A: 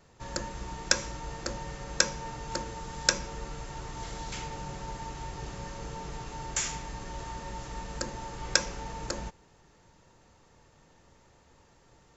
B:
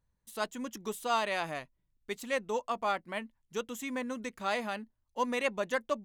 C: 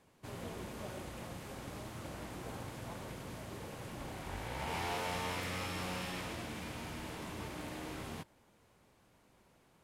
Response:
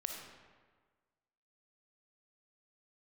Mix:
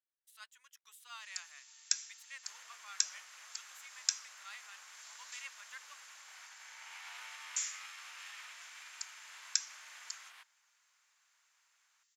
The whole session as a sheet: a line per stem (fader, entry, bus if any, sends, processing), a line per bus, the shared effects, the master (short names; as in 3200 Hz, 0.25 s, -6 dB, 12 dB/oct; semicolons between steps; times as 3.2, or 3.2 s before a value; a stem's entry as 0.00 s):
-4.0 dB, 1.00 s, no send, differentiator
-13.0 dB, 0.00 s, no send, dry
+2.0 dB, 2.20 s, no send, tilt -3 dB/oct; limiter -31 dBFS, peak gain reduction 8 dB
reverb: off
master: HPF 1400 Hz 24 dB/oct